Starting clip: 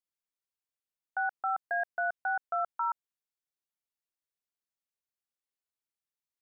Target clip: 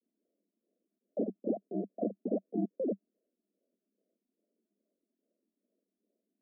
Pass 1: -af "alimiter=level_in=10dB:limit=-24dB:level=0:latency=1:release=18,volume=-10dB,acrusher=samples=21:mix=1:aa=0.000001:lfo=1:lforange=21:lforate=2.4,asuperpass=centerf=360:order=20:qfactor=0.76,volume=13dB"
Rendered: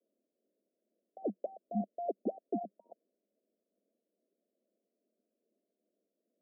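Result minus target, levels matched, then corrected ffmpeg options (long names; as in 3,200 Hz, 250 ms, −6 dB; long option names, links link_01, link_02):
sample-and-hold swept by an LFO: distortion −30 dB
-af "alimiter=level_in=10dB:limit=-24dB:level=0:latency=1:release=18,volume=-10dB,acrusher=samples=59:mix=1:aa=0.000001:lfo=1:lforange=59:lforate=2.4,asuperpass=centerf=360:order=20:qfactor=0.76,volume=13dB"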